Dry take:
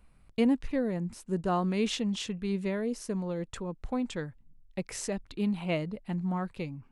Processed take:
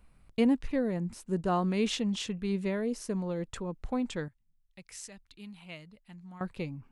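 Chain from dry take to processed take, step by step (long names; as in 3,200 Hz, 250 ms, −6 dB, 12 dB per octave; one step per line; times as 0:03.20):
0:04.28–0:06.41: guitar amp tone stack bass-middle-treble 5-5-5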